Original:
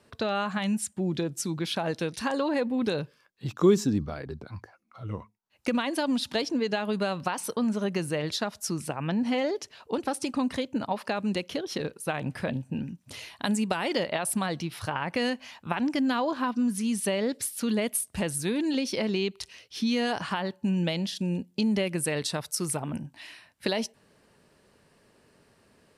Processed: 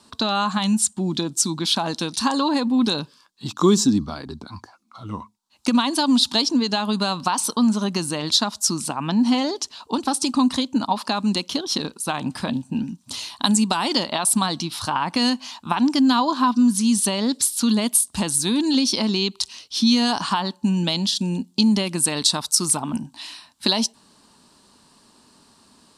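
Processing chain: graphic EQ 125/250/500/1000/2000/4000/8000 Hz -5/+9/-9/+11/-8/+11/+10 dB; trim +3 dB

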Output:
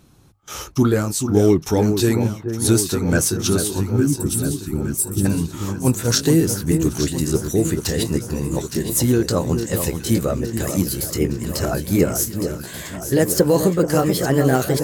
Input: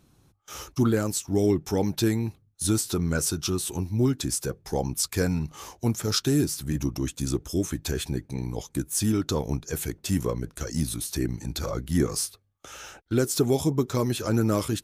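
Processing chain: pitch bend over the whole clip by +4 st starting unshifted; time-frequency box 3.93–5.25 s, 390–7300 Hz -28 dB; echo whose repeats swap between lows and highs 432 ms, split 1.5 kHz, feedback 79%, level -7.5 dB; trim +8 dB

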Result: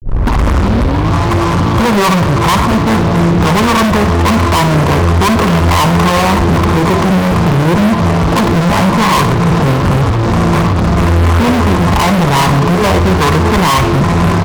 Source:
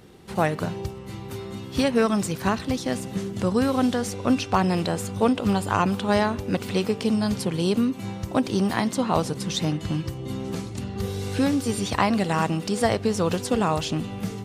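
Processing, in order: tape start-up on the opening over 1.12 s; bass shelf 130 Hz +11 dB; one-sided clip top -23 dBFS; four-pole ladder low-pass 1.3 kHz, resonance 80%; pitch shift -2.5 st; fuzz box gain 50 dB, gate -58 dBFS; flutter echo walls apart 10 m, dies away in 0.33 s; trim +4 dB

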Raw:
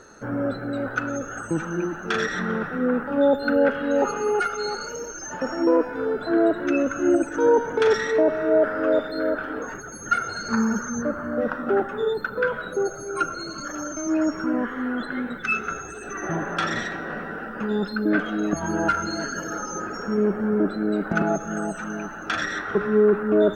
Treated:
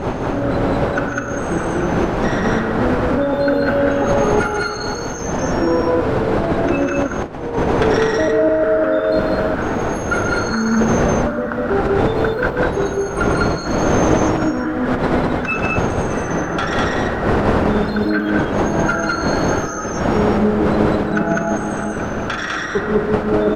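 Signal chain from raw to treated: wind noise 590 Hz -20 dBFS; compressor with a negative ratio -17 dBFS, ratio -0.5; loudspeakers at several distances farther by 49 m -6 dB, 69 m -1 dB

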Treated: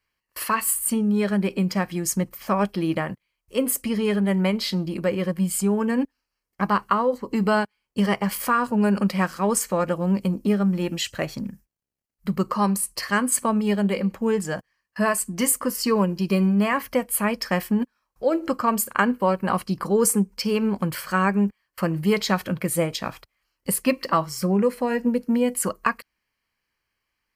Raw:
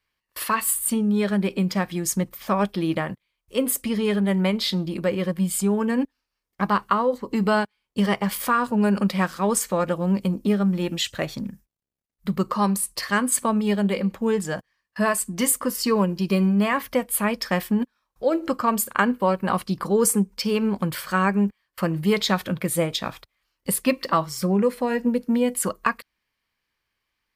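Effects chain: band-stop 3.6 kHz, Q 5.1

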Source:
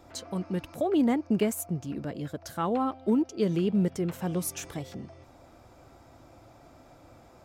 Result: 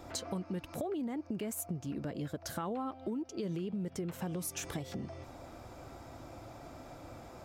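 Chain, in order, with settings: peak limiter -23 dBFS, peak gain reduction 8 dB; compression, threshold -40 dBFS, peak gain reduction 13 dB; trim +4.5 dB

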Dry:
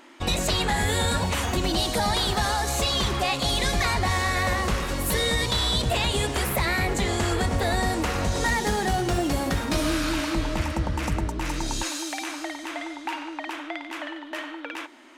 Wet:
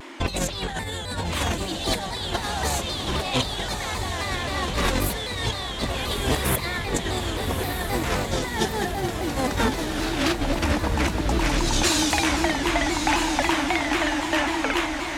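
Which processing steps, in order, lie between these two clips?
treble shelf 9.6 kHz -4.5 dB; band-stop 1.3 kHz, Q 20; dynamic bell 3.5 kHz, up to +6 dB, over -43 dBFS, Q 6.4; compressor with a negative ratio -29 dBFS, ratio -0.5; echo that smears into a reverb 1246 ms, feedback 55%, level -6 dB; vibrato with a chosen wave saw down 3.8 Hz, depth 160 cents; trim +4.5 dB

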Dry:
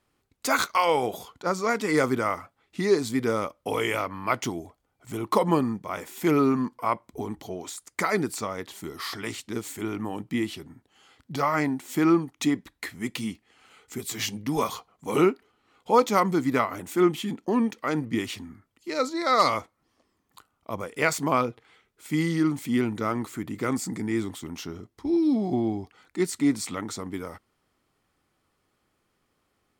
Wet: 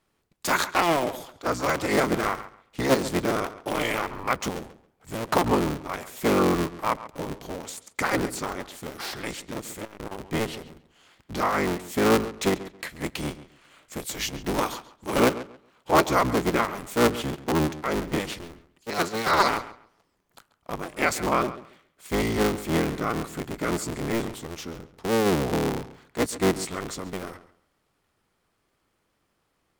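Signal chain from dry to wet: cycle switcher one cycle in 3, inverted; on a send: filtered feedback delay 137 ms, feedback 21%, low-pass 4.7 kHz, level -15 dB; 9.51–10.27 s: on the sum: transformer saturation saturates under 650 Hz

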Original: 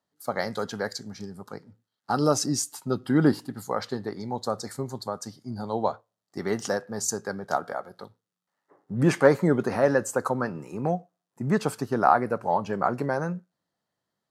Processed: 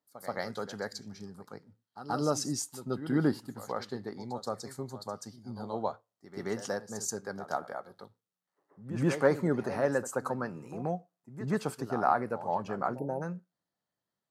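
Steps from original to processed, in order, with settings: spectral selection erased 12.99–13.22 s, 950–9800 Hz; reverse echo 130 ms -12.5 dB; trim -7 dB

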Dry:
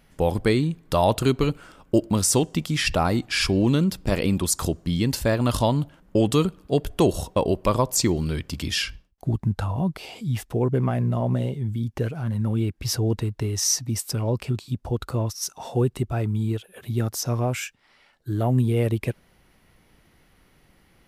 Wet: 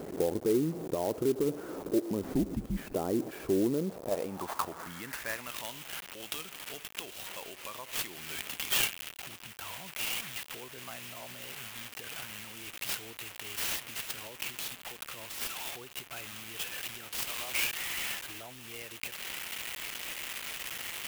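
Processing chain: one-bit delta coder 64 kbps, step -30 dBFS; 14.27–14.96 s: high-pass 120 Hz 12 dB/octave; 17.12–17.53 s: tilt EQ +3.5 dB/octave; compression, threshold -24 dBFS, peak gain reduction 10.5 dB; peak limiter -21 dBFS, peak gain reduction 8 dB; band-pass sweep 390 Hz -> 2.9 kHz, 3.64–5.68 s; 2.23–2.95 s: frequency shift -110 Hz; sampling jitter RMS 0.052 ms; trim +7 dB

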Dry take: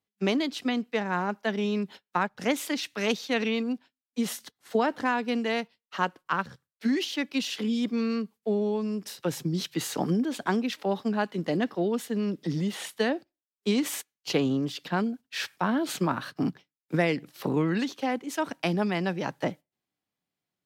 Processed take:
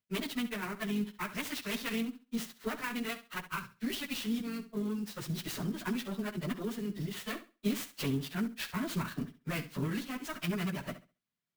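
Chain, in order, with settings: single-diode clipper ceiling -25.5 dBFS; graphic EQ with 31 bands 315 Hz -9 dB, 500 Hz -11 dB, 800 Hz -12 dB; plain phase-vocoder stretch 0.56×; flutter echo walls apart 11.5 m, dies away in 0.31 s; sampling jitter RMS 0.026 ms

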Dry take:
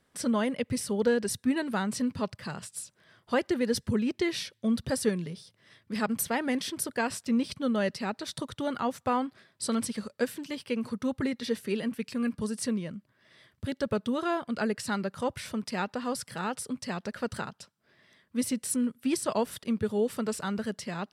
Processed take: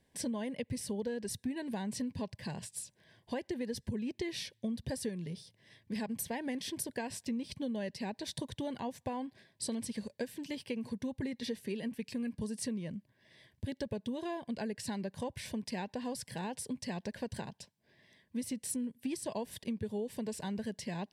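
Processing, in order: bass shelf 160 Hz +5.5 dB; compression, threshold -31 dBFS, peak gain reduction 11.5 dB; Butterworth band-stop 1.3 kHz, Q 2.4; trim -3 dB

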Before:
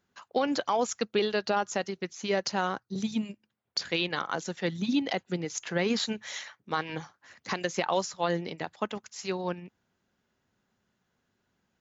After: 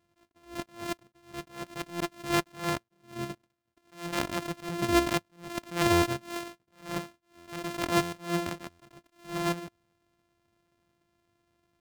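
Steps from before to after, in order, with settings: sorted samples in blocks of 128 samples; treble shelf 6.8 kHz -4 dB; buffer glitch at 1.90/5.92/7.37/8.02/8.69 s, samples 512; attacks held to a fixed rise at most 160 dB/s; trim +3.5 dB

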